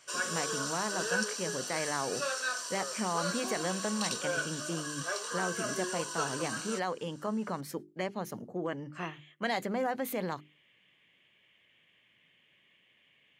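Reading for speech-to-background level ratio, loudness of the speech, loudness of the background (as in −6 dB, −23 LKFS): −2.0 dB, −36.5 LKFS, −34.5 LKFS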